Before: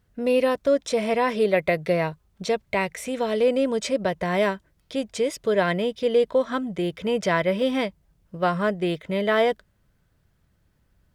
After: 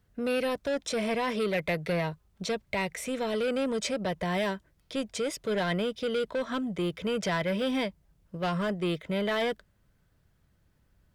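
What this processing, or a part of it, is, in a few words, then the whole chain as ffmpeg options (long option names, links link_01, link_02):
one-band saturation: -filter_complex "[0:a]acrossover=split=220|2100[link_01][link_02][link_03];[link_02]asoftclip=type=tanh:threshold=-25.5dB[link_04];[link_01][link_04][link_03]amix=inputs=3:normalize=0,volume=-2dB"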